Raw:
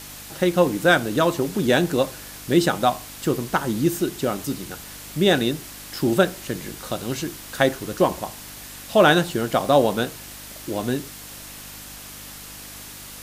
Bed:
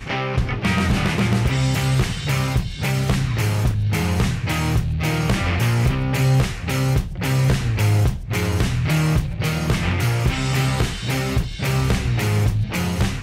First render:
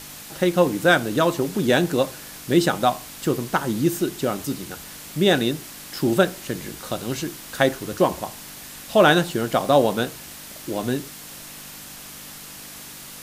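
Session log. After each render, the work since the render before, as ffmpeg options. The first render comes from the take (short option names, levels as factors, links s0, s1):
-af "bandreject=f=50:t=h:w=4,bandreject=f=100:t=h:w=4"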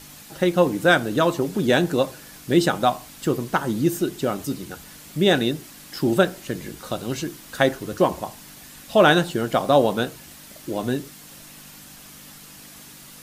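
-af "afftdn=nr=6:nf=-40"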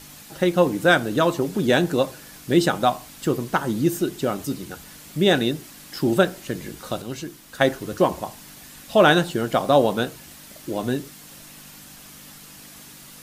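-filter_complex "[0:a]asplit=3[s0][s1][s2];[s0]atrim=end=7.022[s3];[s1]atrim=start=7.018:end=7.612,asetpts=PTS-STARTPTS,volume=0.596[s4];[s2]atrim=start=7.608[s5];[s3][s4]acrossfade=d=0.004:c1=hsin:c2=hsin[s6];[s6][s5]acrossfade=d=0.004:c1=hsin:c2=hsin"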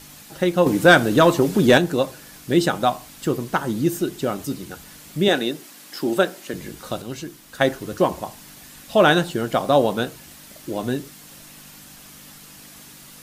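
-filter_complex "[0:a]asettb=1/sr,asplit=3[s0][s1][s2];[s0]atrim=end=0.664[s3];[s1]atrim=start=0.66:end=1.78,asetpts=PTS-STARTPTS,afade=t=in:d=0.004:c=qsin,afade=t=out:st=1.116:d=0.004:c=qsin,acontrast=49[s4];[s2]atrim=start=1.776[s5];[s3][s4]acrossfade=d=0.004:c1=hsin:c2=qsin[s6];[s6][s5]acrossfade=d=0.004:c1=qsin:c2=hsin,asettb=1/sr,asplit=3[s7][s8][s9];[s7]atrim=end=5.284[s10];[s8]atrim=start=5.28:end=6.54,asetpts=PTS-STARTPTS,afade=t=in:d=0.004:c=qsin,afade=t=out:st=1.256:d=0.004:c=qsin,highpass=250[s11];[s9]atrim=start=6.536[s12];[s10][s11]acrossfade=d=0.004:c1=hsin:c2=qsin[s13];[s13][s12]acrossfade=d=0.004:c1=qsin:c2=hsin"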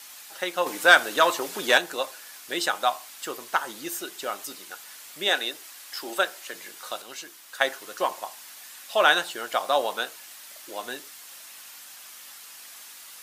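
-af "highpass=860"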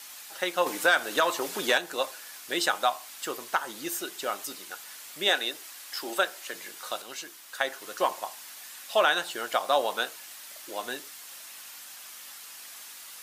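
-af "alimiter=limit=0.282:level=0:latency=1:release=249"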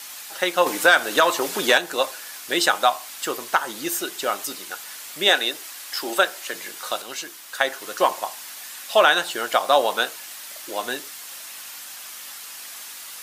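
-af "volume=2.24"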